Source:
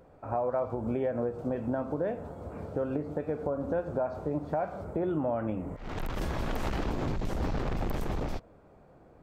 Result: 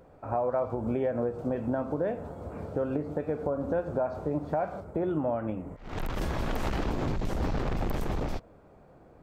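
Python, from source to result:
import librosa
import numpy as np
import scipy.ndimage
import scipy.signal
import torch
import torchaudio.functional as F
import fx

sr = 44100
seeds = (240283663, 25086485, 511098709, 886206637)

y = fx.upward_expand(x, sr, threshold_db=-41.0, expansion=1.5, at=(4.8, 5.93))
y = F.gain(torch.from_numpy(y), 1.5).numpy()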